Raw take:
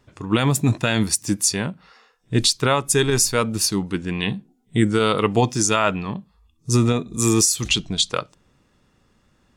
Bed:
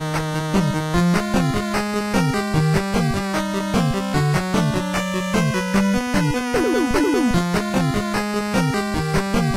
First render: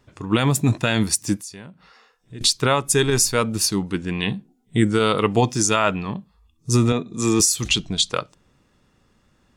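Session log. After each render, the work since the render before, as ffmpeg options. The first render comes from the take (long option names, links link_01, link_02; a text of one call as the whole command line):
ffmpeg -i in.wav -filter_complex "[0:a]asettb=1/sr,asplit=3[link_01][link_02][link_03];[link_01]atrim=end=1.374[link_04];[link_02]atrim=start=1.37:end=2.41,asetpts=PTS-STARTPTS,afade=type=in:duration=0.004:curve=qsin,afade=type=out:start_time=1.036:duration=0.004:curve=qsin,acompressor=threshold=-47dB:ratio=2:attack=3.2:release=140:knee=1:detection=peak[link_05];[link_03]atrim=start=2.406[link_06];[link_04][link_05]acrossfade=duration=0.004:curve1=hsin:curve2=qsin[link_07];[link_07][link_06]acrossfade=duration=0.004:curve1=qsin:curve2=hsin,asettb=1/sr,asplit=3[link_08][link_09][link_10];[link_08]atrim=end=6.924[link_11];[link_09]atrim=start=6.92:end=7.4,asetpts=PTS-STARTPTS,afade=type=in:duration=0.004:curve=qsin,afade=type=out:start_time=0.476:duration=0.004:curve=qsin,highpass=130,lowpass=5700[link_12];[link_10]atrim=start=7.396[link_13];[link_11][link_12]acrossfade=duration=0.004:curve1=hsin:curve2=qsin[link_14];[link_14][link_13]acrossfade=duration=0.004:curve1=qsin:curve2=hsin" out.wav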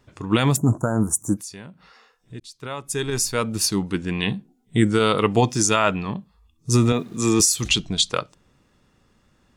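ffmpeg -i in.wav -filter_complex "[0:a]asplit=3[link_01][link_02][link_03];[link_01]afade=type=out:start_time=0.56:duration=0.02[link_04];[link_02]asuperstop=centerf=3100:order=12:qfactor=0.6,afade=type=in:start_time=0.56:duration=0.02,afade=type=out:start_time=1.37:duration=0.02[link_05];[link_03]afade=type=in:start_time=1.37:duration=0.02[link_06];[link_04][link_05][link_06]amix=inputs=3:normalize=0,asettb=1/sr,asplit=3[link_07][link_08][link_09];[link_07]atrim=end=6.704[link_10];[link_08]atrim=start=6.7:end=7.2,asetpts=PTS-STARTPTS,afade=type=in:duration=0.004:curve=qsin,afade=type=out:start_time=0.496:duration=0.004:curve=qsin,aeval=exprs='val(0)*gte(abs(val(0)),0.00501)':channel_layout=same[link_11];[link_09]atrim=start=7.196[link_12];[link_10][link_11]acrossfade=duration=0.004:curve1=hsin:curve2=qsin[link_13];[link_13][link_12]acrossfade=duration=0.004:curve1=qsin:curve2=hsin,asplit=2[link_14][link_15];[link_14]atrim=end=2.4,asetpts=PTS-STARTPTS,afade=type=out:start_time=2.396:duration=0.004:curve=hsin[link_16];[link_15]atrim=start=2.4,asetpts=PTS-STARTPTS,afade=type=in:duration=1.4[link_17];[link_16][link_17]concat=n=2:v=0:a=1" out.wav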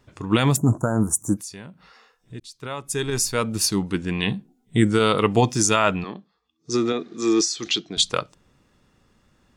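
ffmpeg -i in.wav -filter_complex "[0:a]asettb=1/sr,asplit=3[link_01][link_02][link_03];[link_01]atrim=end=6.044[link_04];[link_02]atrim=start=6.04:end=7.97,asetpts=PTS-STARTPTS,afade=type=in:duration=0.004:curve=qsin,afade=type=out:start_time=1.926:duration=0.004:curve=qsin,highpass=320,equalizer=frequency=340:width_type=q:width=4:gain=5,equalizer=frequency=580:width_type=q:width=4:gain=-4,equalizer=frequency=960:width_type=q:width=4:gain=-8,equalizer=frequency=2700:width_type=q:width=4:gain=-6,lowpass=frequency=5700:width=0.5412,lowpass=frequency=5700:width=1.3066[link_05];[link_03]atrim=start=7.966[link_06];[link_04][link_05]acrossfade=duration=0.004:curve1=hsin:curve2=qsin[link_07];[link_07][link_06]acrossfade=duration=0.004:curve1=qsin:curve2=hsin" out.wav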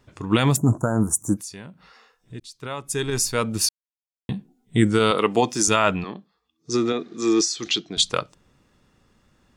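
ffmpeg -i in.wav -filter_complex "[0:a]asettb=1/sr,asplit=3[link_01][link_02][link_03];[link_01]atrim=end=5.114[link_04];[link_02]atrim=start=5.11:end=5.68,asetpts=PTS-STARTPTS,afade=type=in:duration=0.004:curve=qsin,afade=type=out:start_time=0.566:duration=0.004:curve=qsin,highpass=230[link_05];[link_03]atrim=start=5.676[link_06];[link_04][link_05]acrossfade=duration=0.004:curve1=hsin:curve2=qsin[link_07];[link_07][link_06]acrossfade=duration=0.004:curve1=qsin:curve2=hsin,asplit=3[link_08][link_09][link_10];[link_08]atrim=end=3.69,asetpts=PTS-STARTPTS,afade=type=out:start_time=3.686:duration=0.004:curve=hsin[link_11];[link_09]atrim=start=3.69:end=4.29,asetpts=PTS-STARTPTS,volume=0[link_12];[link_10]atrim=start=4.29,asetpts=PTS-STARTPTS,afade=type=in:duration=0.004:curve=hsin[link_13];[link_11][link_12][link_13]concat=n=3:v=0:a=1" out.wav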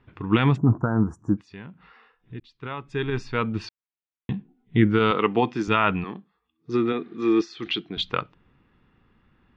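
ffmpeg -i in.wav -af "lowpass=frequency=3000:width=0.5412,lowpass=frequency=3000:width=1.3066,equalizer=frequency=590:width_type=o:width=0.46:gain=-8.5" out.wav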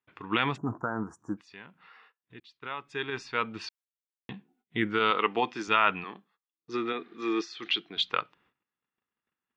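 ffmpeg -i in.wav -af "agate=range=-23dB:threshold=-57dB:ratio=16:detection=peak,highpass=frequency=930:poles=1" out.wav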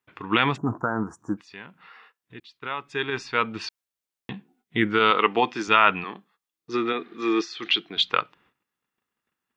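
ffmpeg -i in.wav -af "volume=6dB" out.wav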